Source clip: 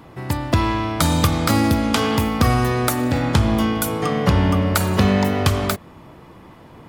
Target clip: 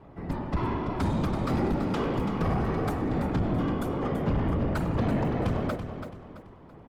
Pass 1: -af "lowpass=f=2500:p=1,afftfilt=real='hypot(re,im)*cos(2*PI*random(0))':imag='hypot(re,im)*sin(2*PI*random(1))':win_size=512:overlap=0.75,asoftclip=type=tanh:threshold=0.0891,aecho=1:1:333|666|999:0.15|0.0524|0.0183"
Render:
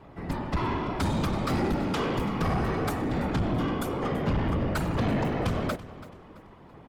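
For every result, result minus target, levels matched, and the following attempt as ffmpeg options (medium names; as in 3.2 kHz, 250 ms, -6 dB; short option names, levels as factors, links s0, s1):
echo-to-direct -8 dB; 2 kHz band +3.5 dB
-af "lowpass=f=2500:p=1,afftfilt=real='hypot(re,im)*cos(2*PI*random(0))':imag='hypot(re,im)*sin(2*PI*random(1))':win_size=512:overlap=0.75,asoftclip=type=tanh:threshold=0.0891,aecho=1:1:333|666|999|1332:0.376|0.132|0.046|0.0161"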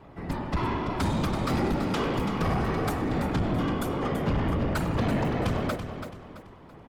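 2 kHz band +3.5 dB
-af "lowpass=f=950:p=1,afftfilt=real='hypot(re,im)*cos(2*PI*random(0))':imag='hypot(re,im)*sin(2*PI*random(1))':win_size=512:overlap=0.75,asoftclip=type=tanh:threshold=0.0891,aecho=1:1:333|666|999|1332:0.376|0.132|0.046|0.0161"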